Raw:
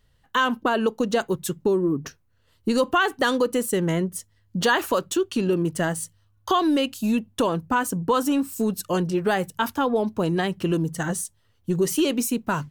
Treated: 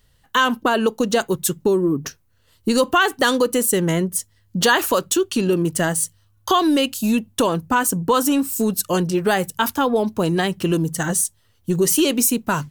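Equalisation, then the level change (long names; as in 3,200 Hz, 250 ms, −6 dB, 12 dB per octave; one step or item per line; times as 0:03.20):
high-shelf EQ 4,700 Hz +8.5 dB
+3.5 dB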